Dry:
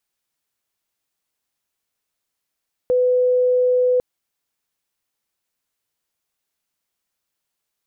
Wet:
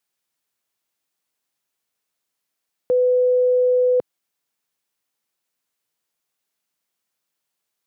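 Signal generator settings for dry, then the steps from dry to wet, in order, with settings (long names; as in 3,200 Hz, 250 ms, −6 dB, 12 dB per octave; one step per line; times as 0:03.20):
tone sine 500 Hz −13.5 dBFS 1.10 s
high-pass filter 120 Hz 12 dB per octave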